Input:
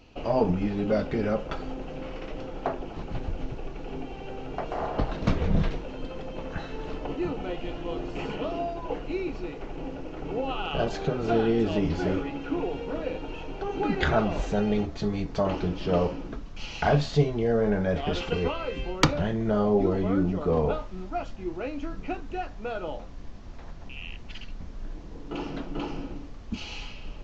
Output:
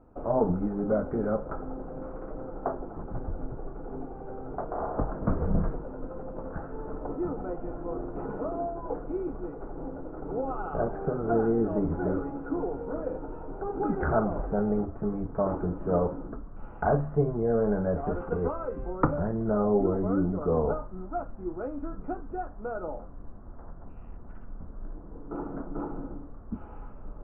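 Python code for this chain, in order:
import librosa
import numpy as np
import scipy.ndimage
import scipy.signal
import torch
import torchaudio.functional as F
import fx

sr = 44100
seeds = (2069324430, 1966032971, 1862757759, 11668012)

y = scipy.signal.sosfilt(scipy.signal.ellip(4, 1.0, 70, 1400.0, 'lowpass', fs=sr, output='sos'), x)
y = fx.hum_notches(y, sr, base_hz=50, count=3)
y = y * librosa.db_to_amplitude(-1.0)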